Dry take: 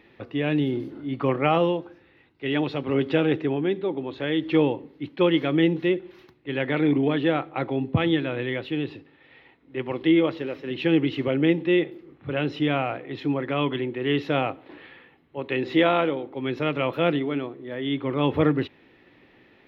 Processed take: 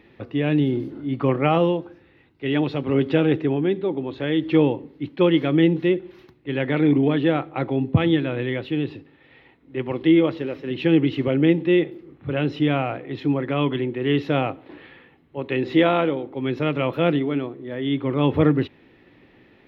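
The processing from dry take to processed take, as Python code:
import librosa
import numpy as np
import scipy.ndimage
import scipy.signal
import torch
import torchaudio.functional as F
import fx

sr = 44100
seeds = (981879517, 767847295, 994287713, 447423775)

y = fx.low_shelf(x, sr, hz=350.0, db=6.0)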